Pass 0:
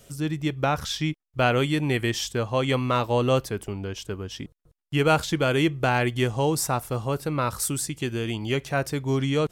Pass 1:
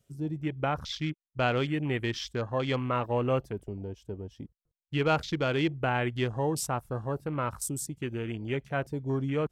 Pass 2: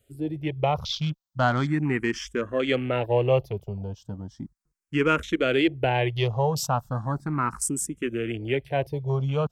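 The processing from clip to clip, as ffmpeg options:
ffmpeg -i in.wav -af "afwtdn=0.0178,volume=-5.5dB" out.wav
ffmpeg -i in.wav -filter_complex "[0:a]asplit=2[link_01][link_02];[link_02]afreqshift=0.36[link_03];[link_01][link_03]amix=inputs=2:normalize=1,volume=7.5dB" out.wav

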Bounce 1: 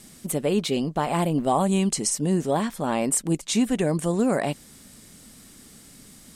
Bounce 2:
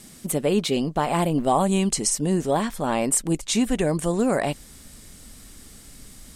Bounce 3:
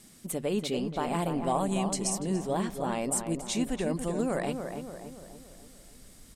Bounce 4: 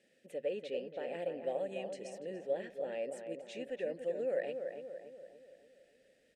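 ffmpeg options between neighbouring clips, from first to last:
ffmpeg -i in.wav -af "asubboost=boost=4.5:cutoff=76,volume=2dB" out.wav
ffmpeg -i in.wav -filter_complex "[0:a]bandreject=frequency=50:width_type=h:width=6,bandreject=frequency=100:width_type=h:width=6,bandreject=frequency=150:width_type=h:width=6,asplit=2[link_01][link_02];[link_02]adelay=288,lowpass=frequency=1700:poles=1,volume=-6dB,asplit=2[link_03][link_04];[link_04]adelay=288,lowpass=frequency=1700:poles=1,volume=0.53,asplit=2[link_05][link_06];[link_06]adelay=288,lowpass=frequency=1700:poles=1,volume=0.53,asplit=2[link_07][link_08];[link_08]adelay=288,lowpass=frequency=1700:poles=1,volume=0.53,asplit=2[link_09][link_10];[link_10]adelay=288,lowpass=frequency=1700:poles=1,volume=0.53,asplit=2[link_11][link_12];[link_12]adelay=288,lowpass=frequency=1700:poles=1,volume=0.53,asplit=2[link_13][link_14];[link_14]adelay=288,lowpass=frequency=1700:poles=1,volume=0.53[link_15];[link_03][link_05][link_07][link_09][link_11][link_13][link_15]amix=inputs=7:normalize=0[link_16];[link_01][link_16]amix=inputs=2:normalize=0,volume=-8.5dB" out.wav
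ffmpeg -i in.wav -filter_complex "[0:a]asplit=3[link_01][link_02][link_03];[link_01]bandpass=frequency=530:width_type=q:width=8,volume=0dB[link_04];[link_02]bandpass=frequency=1840:width_type=q:width=8,volume=-6dB[link_05];[link_03]bandpass=frequency=2480:width_type=q:width=8,volume=-9dB[link_06];[link_04][link_05][link_06]amix=inputs=3:normalize=0,volume=2.5dB" out.wav

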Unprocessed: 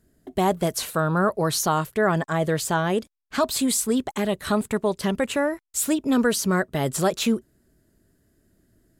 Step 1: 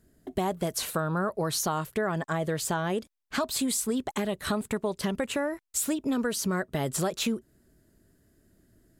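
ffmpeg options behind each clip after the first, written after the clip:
ffmpeg -i in.wav -af "acompressor=threshold=-26dB:ratio=4" out.wav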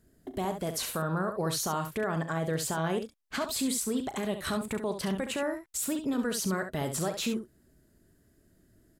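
ffmpeg -i in.wav -af "alimiter=limit=-21.5dB:level=0:latency=1:release=18,aecho=1:1:37|68:0.211|0.376,volume=-1.5dB" out.wav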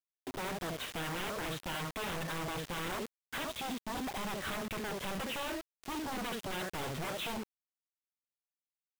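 ffmpeg -i in.wav -af "aresample=8000,aeval=exprs='0.0237*(abs(mod(val(0)/0.0237+3,4)-2)-1)':channel_layout=same,aresample=44100,acrusher=bits=6:mix=0:aa=0.000001" out.wav

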